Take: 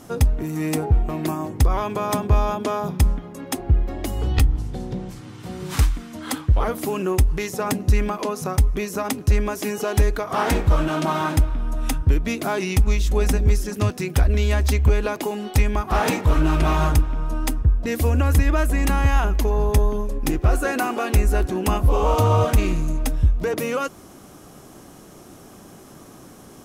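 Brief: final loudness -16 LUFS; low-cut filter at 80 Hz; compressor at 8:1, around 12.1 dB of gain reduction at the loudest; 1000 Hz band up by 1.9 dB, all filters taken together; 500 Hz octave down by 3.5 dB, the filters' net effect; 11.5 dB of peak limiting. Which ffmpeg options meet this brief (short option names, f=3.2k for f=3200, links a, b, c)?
-af "highpass=80,equalizer=f=500:t=o:g=-5.5,equalizer=f=1k:t=o:g=4,acompressor=threshold=-28dB:ratio=8,volume=19.5dB,alimiter=limit=-5.5dB:level=0:latency=1"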